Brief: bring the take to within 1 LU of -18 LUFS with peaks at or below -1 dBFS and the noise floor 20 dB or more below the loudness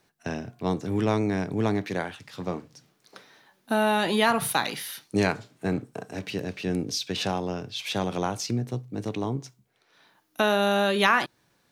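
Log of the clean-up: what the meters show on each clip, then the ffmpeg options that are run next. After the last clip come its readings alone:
loudness -27.0 LUFS; peak level -7.0 dBFS; loudness target -18.0 LUFS
-> -af "volume=2.82,alimiter=limit=0.891:level=0:latency=1"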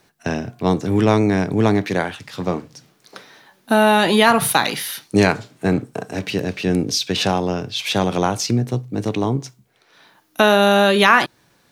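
loudness -18.5 LUFS; peak level -1.0 dBFS; noise floor -59 dBFS

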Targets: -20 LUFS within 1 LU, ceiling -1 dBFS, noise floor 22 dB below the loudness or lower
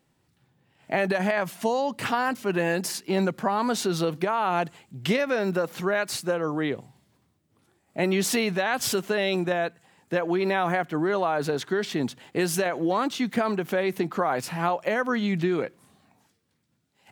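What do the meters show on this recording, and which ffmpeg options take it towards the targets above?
loudness -26.5 LUFS; peak level -10.0 dBFS; loudness target -20.0 LUFS
-> -af "volume=2.11"

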